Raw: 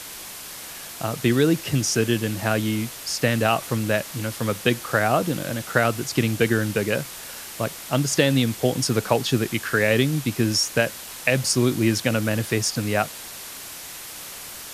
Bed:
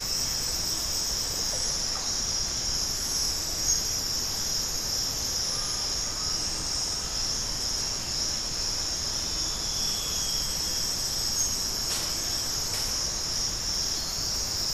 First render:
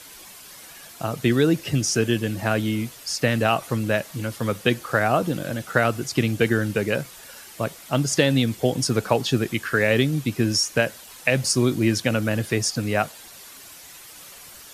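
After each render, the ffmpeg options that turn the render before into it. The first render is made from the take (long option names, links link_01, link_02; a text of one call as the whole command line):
ffmpeg -i in.wav -af "afftdn=noise_reduction=9:noise_floor=-38" out.wav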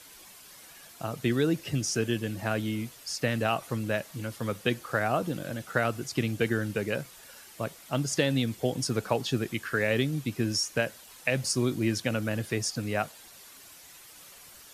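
ffmpeg -i in.wav -af "volume=-7dB" out.wav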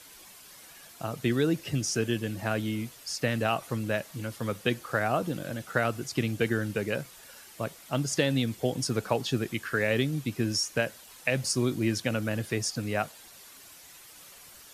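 ffmpeg -i in.wav -af anull out.wav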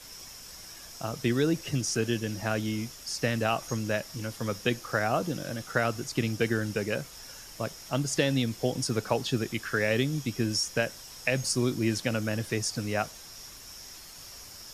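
ffmpeg -i in.wav -i bed.wav -filter_complex "[1:a]volume=-18.5dB[link_01];[0:a][link_01]amix=inputs=2:normalize=0" out.wav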